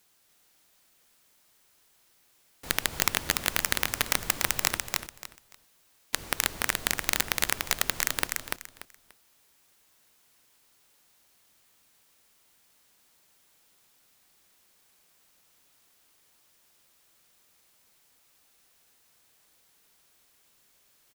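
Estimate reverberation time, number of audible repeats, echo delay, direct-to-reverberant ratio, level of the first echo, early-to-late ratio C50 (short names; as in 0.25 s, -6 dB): none, 3, 0.291 s, none, -3.5 dB, none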